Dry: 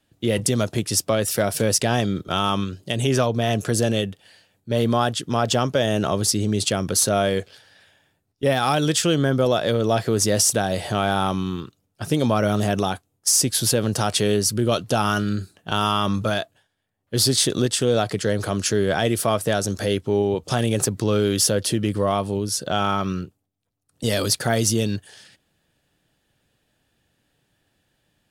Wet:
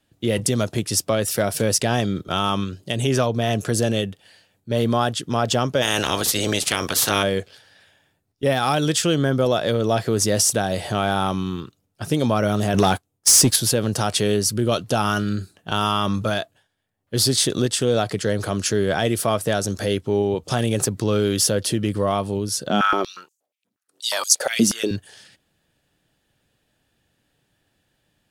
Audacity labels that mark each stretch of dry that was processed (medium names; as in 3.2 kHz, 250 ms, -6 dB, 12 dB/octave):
5.810000	7.220000	spectral peaks clipped ceiling under each frame's peak by 23 dB
12.740000	13.560000	waveshaping leveller passes 2
22.690000	24.910000	step-sequenced high-pass 8.4 Hz 220–6500 Hz